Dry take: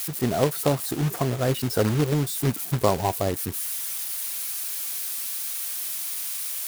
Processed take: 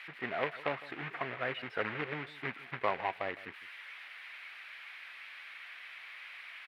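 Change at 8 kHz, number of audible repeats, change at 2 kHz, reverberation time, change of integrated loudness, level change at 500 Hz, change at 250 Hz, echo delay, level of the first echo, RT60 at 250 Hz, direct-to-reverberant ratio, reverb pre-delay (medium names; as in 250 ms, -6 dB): under -40 dB, 1, +0.5 dB, no reverb, -14.0 dB, -13.5 dB, -19.0 dB, 158 ms, -18.0 dB, no reverb, no reverb, no reverb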